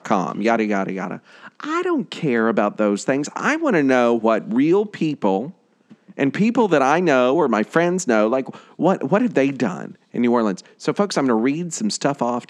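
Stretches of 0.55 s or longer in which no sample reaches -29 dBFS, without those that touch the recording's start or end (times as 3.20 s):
5.50–6.19 s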